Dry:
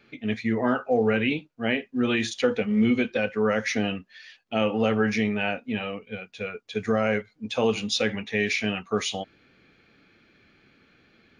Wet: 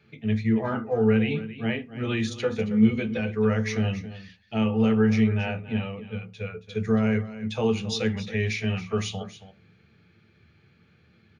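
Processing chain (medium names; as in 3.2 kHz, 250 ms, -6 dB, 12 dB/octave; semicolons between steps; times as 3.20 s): band-stop 530 Hz, Q 14; delay 275 ms -14 dB; on a send at -9 dB: reverberation RT60 0.30 s, pre-delay 3 ms; on the sum: trim -5 dB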